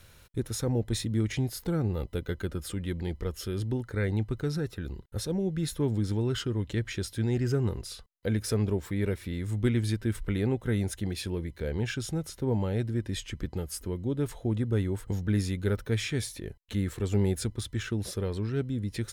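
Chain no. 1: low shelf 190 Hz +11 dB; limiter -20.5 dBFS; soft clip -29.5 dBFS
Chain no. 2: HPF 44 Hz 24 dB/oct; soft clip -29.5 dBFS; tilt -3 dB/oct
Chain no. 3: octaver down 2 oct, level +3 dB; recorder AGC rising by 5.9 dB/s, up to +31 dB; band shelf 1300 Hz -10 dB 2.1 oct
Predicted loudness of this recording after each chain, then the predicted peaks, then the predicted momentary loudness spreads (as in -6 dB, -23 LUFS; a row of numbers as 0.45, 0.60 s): -35.0, -28.0, -29.0 LUFS; -29.5, -17.0, -11.0 dBFS; 3, 5, 6 LU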